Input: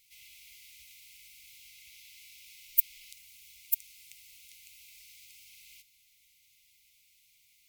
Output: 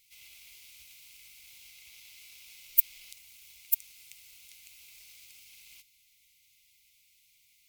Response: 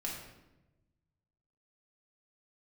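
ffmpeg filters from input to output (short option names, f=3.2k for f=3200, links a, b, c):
-filter_complex "[0:a]asettb=1/sr,asplit=3[a][b][c];[a]atrim=end=0.524[d];[b]atrim=start=0.52:end=1.19,asetpts=PTS-STARTPTS,afade=t=in:d=0.004:c=qsin,afade=t=out:st=0.666:d=0.004:c=qsin,asuperstop=centerf=1000:order=8:qfactor=0.67[e];[c]atrim=start=1.186[f];[d][e]acrossfade=d=0.004:c1=hsin:c2=qsin[g];[g][f]acrossfade=d=0.004:c1=qsin:c2=hsin,asplit=2[h][i];[i]acrusher=bits=7:mix=0:aa=0.000001,volume=-12dB[j];[h][j]amix=inputs=2:normalize=0"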